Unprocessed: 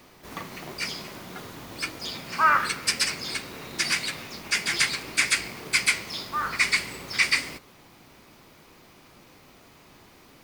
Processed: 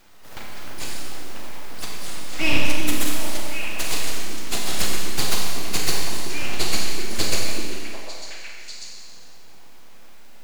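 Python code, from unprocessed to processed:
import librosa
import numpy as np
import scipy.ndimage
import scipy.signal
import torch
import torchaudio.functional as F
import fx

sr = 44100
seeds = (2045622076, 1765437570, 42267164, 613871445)

y = np.abs(x)
y = fx.echo_stepped(y, sr, ms=373, hz=290.0, octaves=1.4, feedback_pct=70, wet_db=-1)
y = fx.rev_schroeder(y, sr, rt60_s=1.9, comb_ms=30, drr_db=-0.5)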